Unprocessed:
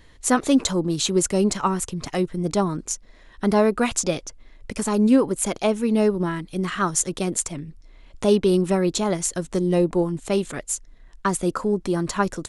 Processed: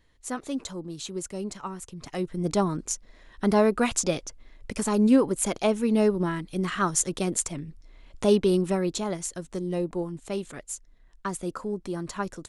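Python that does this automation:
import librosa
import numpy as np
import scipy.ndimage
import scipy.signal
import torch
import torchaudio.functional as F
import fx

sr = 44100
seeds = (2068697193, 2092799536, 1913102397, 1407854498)

y = fx.gain(x, sr, db=fx.line((1.82, -13.5), (2.46, -2.5), (8.34, -2.5), (9.39, -9.0)))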